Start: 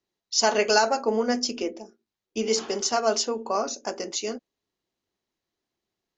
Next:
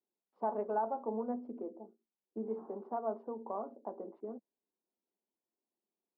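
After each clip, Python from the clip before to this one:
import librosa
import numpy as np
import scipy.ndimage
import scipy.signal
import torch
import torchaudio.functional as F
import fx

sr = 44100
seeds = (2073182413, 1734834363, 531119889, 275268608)

y = fx.wiener(x, sr, points=15)
y = scipy.signal.sosfilt(scipy.signal.ellip(3, 1.0, 70, [200.0, 990.0], 'bandpass', fs=sr, output='sos'), y)
y = fx.dynamic_eq(y, sr, hz=410.0, q=0.74, threshold_db=-34.0, ratio=4.0, max_db=-6)
y = F.gain(torch.from_numpy(y), -7.5).numpy()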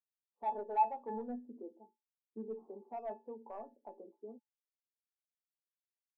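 y = np.clip(10.0 ** (33.0 / 20.0) * x, -1.0, 1.0) / 10.0 ** (33.0 / 20.0)
y = fx.comb_fb(y, sr, f0_hz=860.0, decay_s=0.35, harmonics='all', damping=0.0, mix_pct=80)
y = fx.spectral_expand(y, sr, expansion=1.5)
y = F.gain(torch.from_numpy(y), 16.0).numpy()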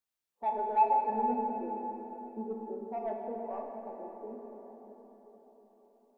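y = fx.rev_plate(x, sr, seeds[0], rt60_s=4.9, hf_ratio=0.55, predelay_ms=0, drr_db=0.5)
y = F.gain(torch.from_numpy(y), 4.5).numpy()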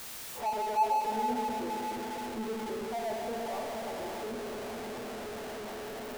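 y = x + 0.5 * 10.0 ** (-31.0 / 20.0) * np.sign(x)
y = F.gain(torch.from_numpy(y), -3.5).numpy()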